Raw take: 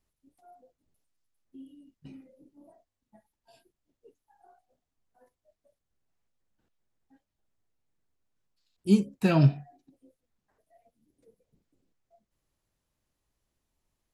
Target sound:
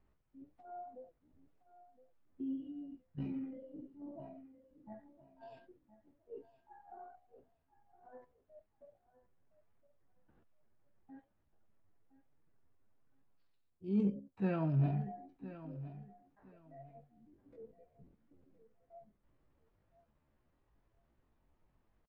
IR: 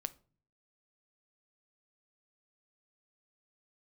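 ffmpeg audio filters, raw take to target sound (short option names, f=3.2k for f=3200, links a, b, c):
-af "lowpass=1.7k,areverse,acompressor=threshold=-37dB:ratio=12,areverse,atempo=0.64,aecho=1:1:1015|2030:0.178|0.0373,volume=7dB"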